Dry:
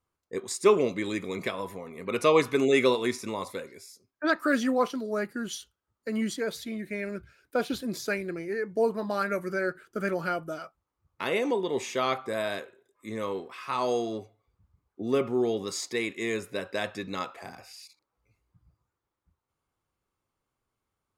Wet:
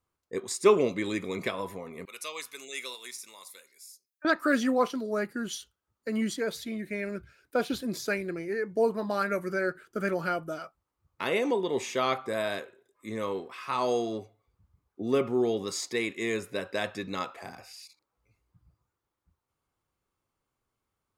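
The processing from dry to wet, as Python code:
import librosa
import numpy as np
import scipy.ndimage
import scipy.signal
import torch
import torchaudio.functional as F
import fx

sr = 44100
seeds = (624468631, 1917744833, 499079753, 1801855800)

y = fx.differentiator(x, sr, at=(2.05, 4.25))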